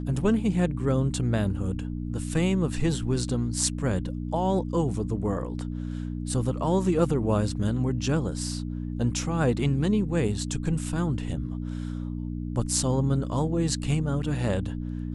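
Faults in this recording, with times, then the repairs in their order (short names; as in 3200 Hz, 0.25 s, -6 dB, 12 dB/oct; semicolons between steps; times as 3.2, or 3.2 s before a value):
hum 60 Hz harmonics 5 -32 dBFS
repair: de-hum 60 Hz, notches 5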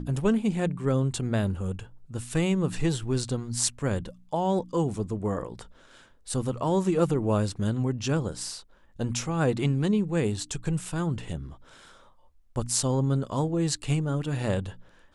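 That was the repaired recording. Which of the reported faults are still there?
none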